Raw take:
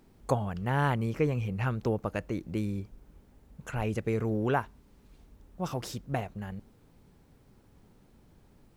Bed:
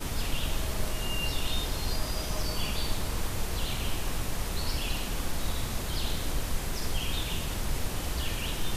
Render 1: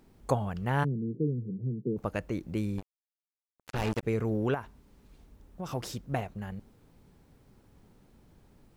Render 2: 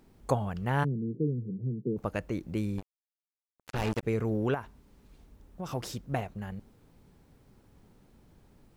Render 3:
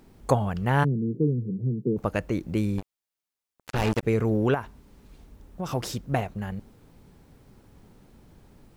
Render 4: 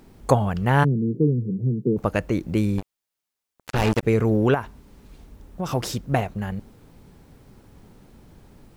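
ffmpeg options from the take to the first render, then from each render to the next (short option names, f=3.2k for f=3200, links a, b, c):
-filter_complex "[0:a]asplit=3[a][b][c];[a]afade=t=out:st=0.83:d=0.02[d];[b]asuperpass=centerf=230:order=12:qfactor=0.73,afade=t=in:st=0.83:d=0.02,afade=t=out:st=1.96:d=0.02[e];[c]afade=t=in:st=1.96:d=0.02[f];[d][e][f]amix=inputs=3:normalize=0,asettb=1/sr,asplit=3[g][h][i];[g]atrim=end=2.784[j];[h]atrim=start=2.78:end=4.03,asetpts=PTS-STARTPTS,afade=t=in:d=0.004:c=qsin,afade=t=out:st=1.246:d=0.004:c=qsin,acrusher=bits=4:mix=0:aa=0.5[k];[i]atrim=start=4.026[l];[j][k]acrossfade=d=0.004:c1=hsin:c2=qsin[m];[m][l]acrossfade=d=0.004:c1=qsin:c2=hsin,asettb=1/sr,asplit=3[n][o][p];[n]atrim=end=4.544[q];[o]atrim=start=4.54:end=5.69,asetpts=PTS-STARTPTS,afade=t=in:d=0.004:c=qsin,afade=t=out:st=1.146:d=0.004:c=qsin,acompressor=threshold=-33dB:ratio=3:attack=3.2:release=140:knee=1:detection=peak[r];[p]atrim=start=5.686[s];[q][r]acrossfade=d=0.004:c1=hsin:c2=qsin[t];[t][s]acrossfade=d=0.004:c1=qsin:c2=hsin"
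-af anull
-af "acontrast=50"
-af "volume=4dB"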